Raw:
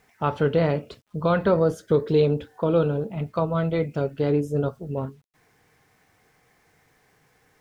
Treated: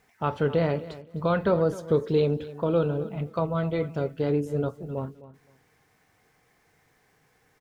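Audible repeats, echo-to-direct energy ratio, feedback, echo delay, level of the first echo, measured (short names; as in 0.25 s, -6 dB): 2, -16.5 dB, 20%, 0.259 s, -16.5 dB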